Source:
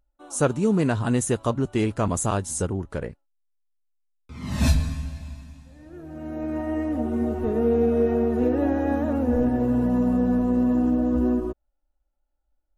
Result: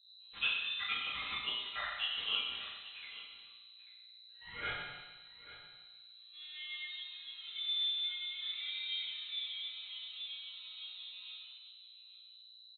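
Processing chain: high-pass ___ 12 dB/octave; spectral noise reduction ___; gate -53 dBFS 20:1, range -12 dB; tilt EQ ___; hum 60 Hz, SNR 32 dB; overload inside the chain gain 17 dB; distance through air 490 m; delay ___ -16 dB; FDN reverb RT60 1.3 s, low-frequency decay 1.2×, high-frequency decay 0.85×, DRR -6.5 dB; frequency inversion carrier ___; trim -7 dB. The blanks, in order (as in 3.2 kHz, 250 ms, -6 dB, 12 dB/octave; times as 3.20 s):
870 Hz, 9 dB, +4.5 dB/octave, 839 ms, 4 kHz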